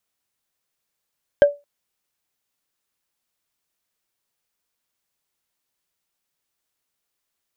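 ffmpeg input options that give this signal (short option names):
-f lavfi -i "aevalsrc='0.596*pow(10,-3*t/0.23)*sin(2*PI*576*t)+0.158*pow(10,-3*t/0.068)*sin(2*PI*1588*t)+0.0422*pow(10,-3*t/0.03)*sin(2*PI*3112.7*t)+0.0112*pow(10,-3*t/0.017)*sin(2*PI*5145.4*t)+0.00299*pow(10,-3*t/0.01)*sin(2*PI*7683.8*t)':d=0.22:s=44100"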